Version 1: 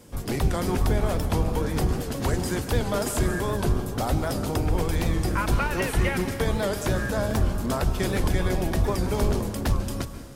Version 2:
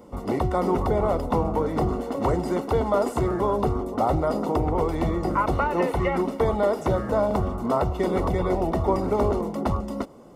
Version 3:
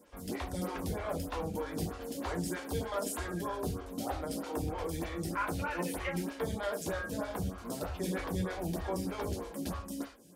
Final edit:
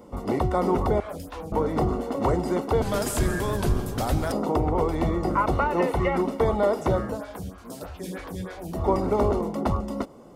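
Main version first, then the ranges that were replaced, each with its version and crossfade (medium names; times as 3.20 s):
2
1.00–1.52 s: from 3
2.82–4.32 s: from 1
7.12–8.78 s: from 3, crossfade 0.16 s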